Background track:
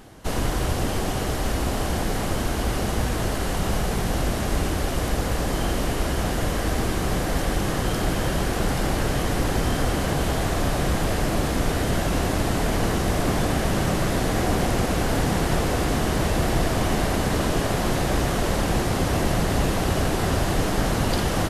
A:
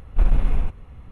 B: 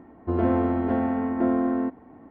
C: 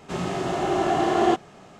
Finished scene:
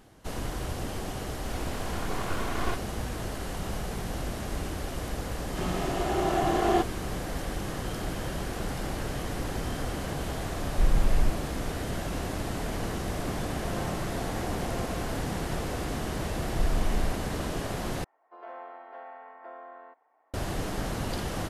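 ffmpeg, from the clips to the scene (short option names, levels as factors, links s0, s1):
-filter_complex "[3:a]asplit=2[s0][s1];[1:a]asplit=2[s2][s3];[2:a]asplit=2[s4][s5];[0:a]volume=0.335[s6];[s0]aeval=exprs='abs(val(0))':c=same[s7];[s2]alimiter=limit=0.237:level=0:latency=1:release=71[s8];[s4]highpass=f=500:w=0.5412,highpass=f=500:w=1.3066[s9];[s3]alimiter=limit=0.141:level=0:latency=1:release=71[s10];[s5]highpass=f=630:w=0.5412,highpass=f=630:w=1.3066[s11];[s6]asplit=2[s12][s13];[s12]atrim=end=18.044[s14];[s11]atrim=end=2.3,asetpts=PTS-STARTPTS,volume=0.266[s15];[s13]atrim=start=20.336[s16];[s7]atrim=end=1.79,asetpts=PTS-STARTPTS,volume=0.355,afade=t=in:d=0.004:c=hsin,afade=t=out:st=1.786:d=0.004:c=hsin,adelay=1400[s17];[s1]atrim=end=1.79,asetpts=PTS-STARTPTS,volume=0.596,afade=t=in:d=0.004:c=hsin,afade=t=out:st=1.786:d=0.004:c=hsin,adelay=5470[s18];[s8]atrim=end=1.11,asetpts=PTS-STARTPTS,volume=0.794,afade=t=in:d=0.004:c=hsin,afade=t=out:st=1.106:d=0.004:c=hsin,adelay=10620[s19];[s9]atrim=end=2.3,asetpts=PTS-STARTPTS,volume=0.299,afade=t=in:d=0.004:c=hsin,afade=t=out:st=2.296:d=0.004:c=hsin,adelay=13280[s20];[s10]atrim=end=1.11,asetpts=PTS-STARTPTS,volume=0.708,afade=t=in:d=0.004:c=hsin,afade=t=out:st=1.106:d=0.004:c=hsin,adelay=16430[s21];[s14][s15]acrossfade=d=0.004:c1=hsin:c2=hsin[s22];[s22][s16]acrossfade=d=0.004:c1=hsin:c2=hsin[s23];[s23][s17][s18][s19][s20][s21]amix=inputs=6:normalize=0"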